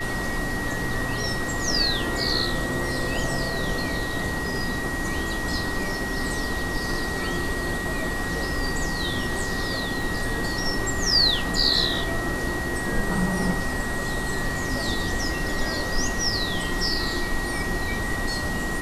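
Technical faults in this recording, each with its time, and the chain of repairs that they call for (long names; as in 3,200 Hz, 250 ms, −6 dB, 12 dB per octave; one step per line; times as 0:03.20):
whistle 1,900 Hz −30 dBFS
0:10.02: drop-out 2.1 ms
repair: notch filter 1,900 Hz, Q 30
repair the gap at 0:10.02, 2.1 ms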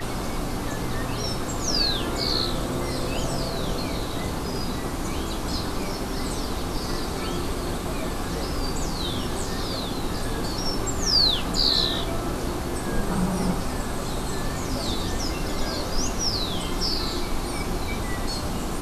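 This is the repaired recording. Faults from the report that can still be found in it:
none of them is left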